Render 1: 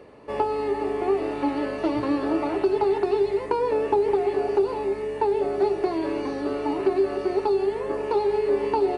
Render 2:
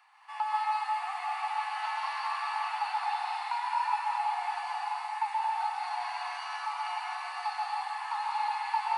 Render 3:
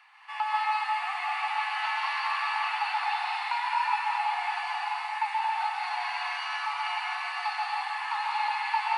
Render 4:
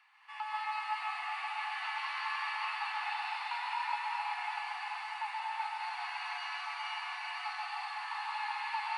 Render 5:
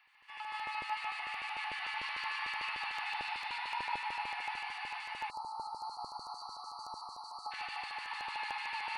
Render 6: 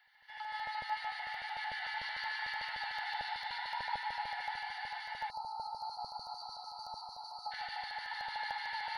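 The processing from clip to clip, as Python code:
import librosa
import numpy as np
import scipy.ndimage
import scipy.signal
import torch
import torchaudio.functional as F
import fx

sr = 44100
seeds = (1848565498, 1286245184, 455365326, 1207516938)

y1 = scipy.signal.sosfilt(scipy.signal.butter(16, 770.0, 'highpass', fs=sr, output='sos'), x)
y1 = fx.rev_plate(y1, sr, seeds[0], rt60_s=2.5, hf_ratio=0.9, predelay_ms=115, drr_db=-5.5)
y1 = F.gain(torch.from_numpy(y1), -5.0).numpy()
y2 = fx.peak_eq(y1, sr, hz=2400.0, db=11.0, octaves=2.1)
y2 = F.gain(torch.from_numpy(y2), -2.0).numpy()
y3 = scipy.signal.sosfilt(scipy.signal.butter(2, 770.0, 'highpass', fs=sr, output='sos'), y2)
y3 = y3 + 10.0 ** (-3.5 / 20.0) * np.pad(y3, (int(379 * sr / 1000.0), 0))[:len(y3)]
y3 = F.gain(torch.from_numpy(y3), -8.0).numpy()
y4 = fx.filter_lfo_notch(y3, sr, shape='square', hz=6.7, low_hz=570.0, high_hz=7300.0, q=0.82)
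y4 = fx.peak_eq(y4, sr, hz=1200.0, db=-6.5, octaves=1.1)
y4 = fx.spec_erase(y4, sr, start_s=5.3, length_s=2.22, low_hz=1400.0, high_hz=3900.0)
y4 = F.gain(torch.from_numpy(y4), 2.5).numpy()
y5 = fx.fixed_phaser(y4, sr, hz=1700.0, stages=8)
y5 = F.gain(torch.from_numpy(y5), 2.5).numpy()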